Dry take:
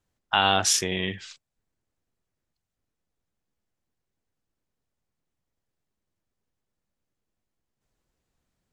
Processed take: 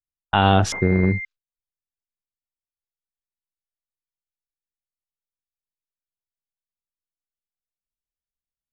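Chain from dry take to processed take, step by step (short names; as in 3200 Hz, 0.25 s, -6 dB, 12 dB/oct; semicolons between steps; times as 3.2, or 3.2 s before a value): gate -35 dBFS, range -41 dB; tilt -4 dB/oct; 0.72–1.25 pulse-width modulation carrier 2100 Hz; gain +3.5 dB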